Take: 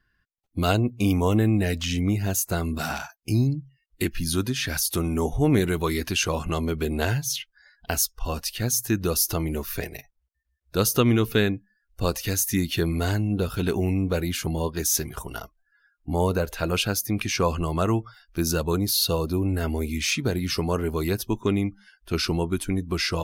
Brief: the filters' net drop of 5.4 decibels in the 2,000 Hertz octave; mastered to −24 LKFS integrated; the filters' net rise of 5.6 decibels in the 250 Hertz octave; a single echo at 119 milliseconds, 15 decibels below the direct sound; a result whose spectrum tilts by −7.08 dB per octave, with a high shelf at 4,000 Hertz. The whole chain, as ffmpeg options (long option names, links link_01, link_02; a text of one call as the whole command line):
ffmpeg -i in.wav -af "equalizer=frequency=250:width_type=o:gain=7.5,equalizer=frequency=2000:width_type=o:gain=-6,highshelf=frequency=4000:gain=-6.5,aecho=1:1:119:0.178,volume=-1.5dB" out.wav